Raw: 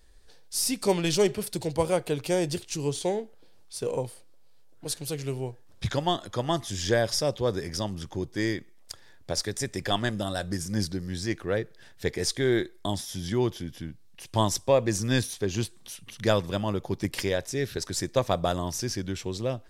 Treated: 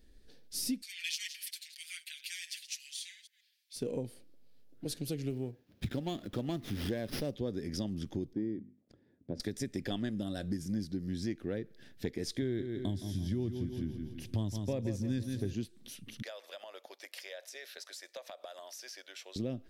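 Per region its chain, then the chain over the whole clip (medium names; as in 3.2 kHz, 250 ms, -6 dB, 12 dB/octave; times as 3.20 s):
0.82–3.76 s: chunks repeated in reverse 136 ms, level -13 dB + steep high-pass 1.8 kHz 48 dB/octave + comb 6.4 ms, depth 69%
5.30–7.34 s: treble shelf 10 kHz +11.5 dB + sliding maximum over 5 samples
8.33–9.40 s: band-pass filter 220 Hz, Q 0.72 + hum notches 50/100/150/200/250 Hz
12.42–15.54 s: peaking EQ 98 Hz +11 dB 0.89 oct + feedback delay 167 ms, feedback 45%, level -9 dB
16.22–19.36 s: elliptic high-pass 590 Hz, stop band 80 dB + compression 10:1, threshold -35 dBFS
whole clip: graphic EQ 250/1000/8000 Hz +11/-11/-7 dB; compression 5:1, threshold -29 dBFS; trim -3.5 dB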